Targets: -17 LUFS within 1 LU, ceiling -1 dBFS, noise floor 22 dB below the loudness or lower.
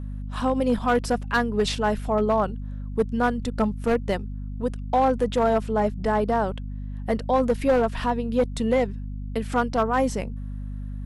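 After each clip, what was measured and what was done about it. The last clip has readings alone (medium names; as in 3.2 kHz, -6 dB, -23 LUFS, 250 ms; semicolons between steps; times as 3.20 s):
clipped samples 1.0%; clipping level -14.0 dBFS; hum 50 Hz; highest harmonic 250 Hz; hum level -30 dBFS; loudness -24.5 LUFS; peak level -14.0 dBFS; loudness target -17.0 LUFS
-> clip repair -14 dBFS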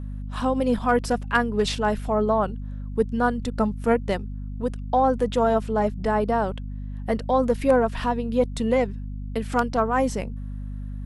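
clipped samples 0.0%; hum 50 Hz; highest harmonic 250 Hz; hum level -30 dBFS
-> de-hum 50 Hz, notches 5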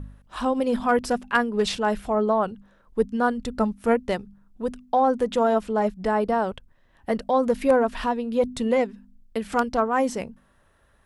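hum not found; loudness -24.5 LUFS; peak level -6.0 dBFS; loudness target -17.0 LUFS
-> trim +7.5 dB; peak limiter -1 dBFS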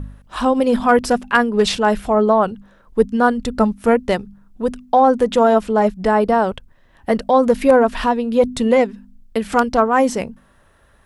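loudness -17.0 LUFS; peak level -1.0 dBFS; noise floor -53 dBFS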